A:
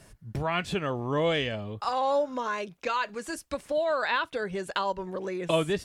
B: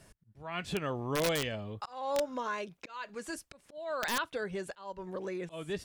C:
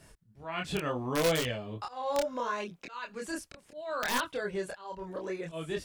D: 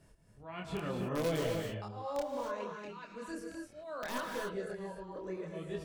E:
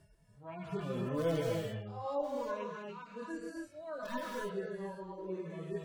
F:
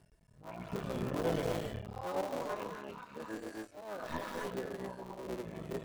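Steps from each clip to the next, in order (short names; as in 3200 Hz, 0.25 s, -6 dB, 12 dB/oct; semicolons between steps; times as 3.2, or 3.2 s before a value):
auto swell 0.351 s; wrapped overs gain 18.5 dB; gain -4.5 dB
chorus voices 2, 0.72 Hz, delay 26 ms, depth 2.2 ms; gain +5 dB
tilt shelf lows +4 dB, about 830 Hz; non-linear reverb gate 0.3 s rising, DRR 1.5 dB; gain -8 dB
median-filter separation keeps harmonic; gain +1 dB
cycle switcher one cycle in 3, muted; gain +1 dB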